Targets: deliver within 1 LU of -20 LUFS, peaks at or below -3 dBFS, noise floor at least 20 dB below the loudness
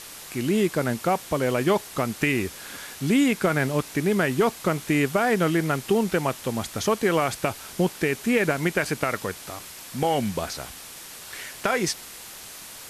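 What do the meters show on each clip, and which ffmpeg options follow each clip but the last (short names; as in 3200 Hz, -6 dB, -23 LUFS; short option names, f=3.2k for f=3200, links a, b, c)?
noise floor -42 dBFS; noise floor target -45 dBFS; loudness -24.5 LUFS; peak -6.5 dBFS; loudness target -20.0 LUFS
-> -af "afftdn=nr=6:nf=-42"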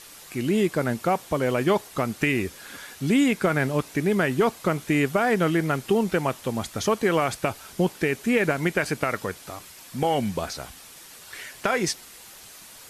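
noise floor -46 dBFS; loudness -24.5 LUFS; peak -6.5 dBFS; loudness target -20.0 LUFS
-> -af "volume=4.5dB,alimiter=limit=-3dB:level=0:latency=1"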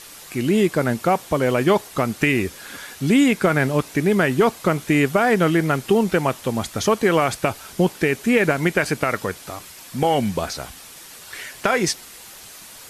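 loudness -20.0 LUFS; peak -3.0 dBFS; noise floor -42 dBFS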